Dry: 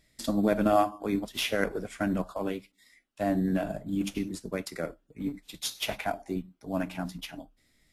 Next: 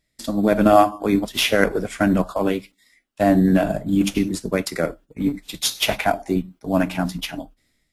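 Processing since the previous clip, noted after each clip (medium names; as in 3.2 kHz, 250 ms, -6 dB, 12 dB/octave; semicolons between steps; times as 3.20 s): gate -53 dBFS, range -9 dB; level rider gain up to 9 dB; trim +2.5 dB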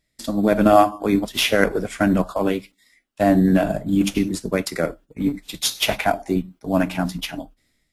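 no audible change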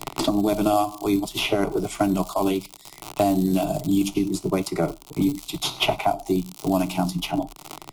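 crackle 100 per s -28 dBFS; static phaser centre 340 Hz, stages 8; three bands compressed up and down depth 100%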